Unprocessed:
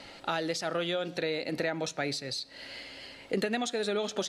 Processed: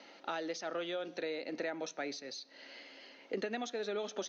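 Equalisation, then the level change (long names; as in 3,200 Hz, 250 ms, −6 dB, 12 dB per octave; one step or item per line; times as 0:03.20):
high-pass filter 230 Hz 24 dB per octave
low-pass with resonance 6,200 Hz, resonance Q 11
high-frequency loss of the air 290 metres
−5.5 dB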